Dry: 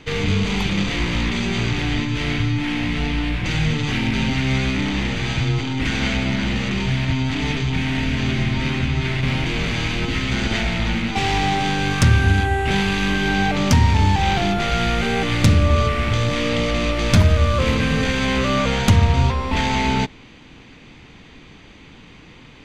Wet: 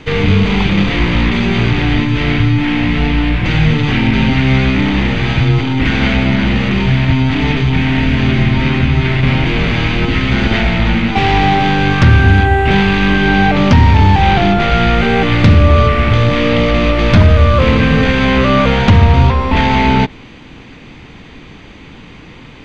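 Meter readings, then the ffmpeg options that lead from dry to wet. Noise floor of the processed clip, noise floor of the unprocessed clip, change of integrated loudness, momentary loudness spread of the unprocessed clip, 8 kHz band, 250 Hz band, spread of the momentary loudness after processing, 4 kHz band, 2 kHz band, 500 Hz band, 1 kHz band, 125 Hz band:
−36 dBFS, −44 dBFS, +8.0 dB, 6 LU, can't be measured, +8.5 dB, 5 LU, +4.5 dB, +7.5 dB, +8.5 dB, +8.5 dB, +8.0 dB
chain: -filter_complex "[0:a]highshelf=frequency=4300:gain=-7.5,apsyclip=10.5dB,acrossover=split=4800[link_01][link_02];[link_02]acompressor=threshold=-47dB:ratio=4:attack=1:release=60[link_03];[link_01][link_03]amix=inputs=2:normalize=0,volume=-1.5dB"

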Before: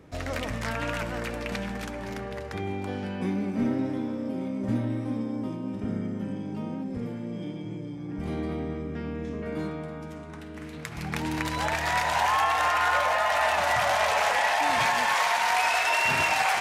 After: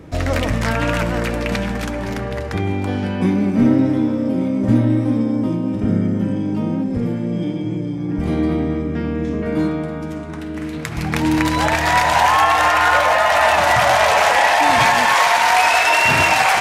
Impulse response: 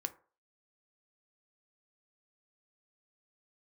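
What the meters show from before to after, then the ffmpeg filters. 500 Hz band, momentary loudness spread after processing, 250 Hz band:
+11.0 dB, 11 LU, +13.0 dB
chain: -filter_complex "[0:a]asplit=2[link_01][link_02];[1:a]atrim=start_sample=2205,lowshelf=frequency=490:gain=9.5[link_03];[link_02][link_03]afir=irnorm=-1:irlink=0,volume=-3.5dB[link_04];[link_01][link_04]amix=inputs=2:normalize=0,volume=5.5dB"

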